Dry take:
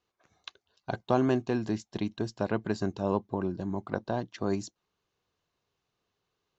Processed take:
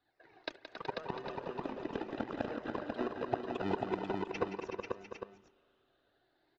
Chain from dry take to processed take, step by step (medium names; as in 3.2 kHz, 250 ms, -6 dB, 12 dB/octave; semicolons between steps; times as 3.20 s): drifting ripple filter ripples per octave 0.8, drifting +0.33 Hz, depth 17 dB; inverted gate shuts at -21 dBFS, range -25 dB; ever faster or slower copies 103 ms, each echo +4 st, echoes 3, each echo -6 dB; in parallel at -4 dB: sample-and-hold 40×; on the sum: distance through air 160 m; on a send at -21 dB: reverberation RT60 1.9 s, pre-delay 34 ms; on the sum: flange 0.86 Hz, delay 0.8 ms, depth 2.8 ms, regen +32%; three-band isolator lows -13 dB, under 260 Hz, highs -15 dB, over 4.9 kHz; multi-tap echo 172/274/373/491/700/805 ms -10/-9.5/-8/-4/-12/-9.5 dB; trim +6 dB